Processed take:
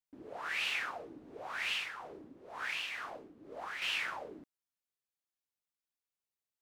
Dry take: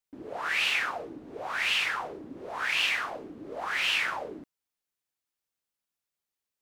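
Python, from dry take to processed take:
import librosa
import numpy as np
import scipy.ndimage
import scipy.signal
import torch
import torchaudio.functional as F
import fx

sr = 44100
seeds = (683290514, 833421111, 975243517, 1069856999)

y = fx.tremolo(x, sr, hz=2.1, depth=0.51, at=(1.69, 3.82))
y = F.gain(torch.from_numpy(y), -8.0).numpy()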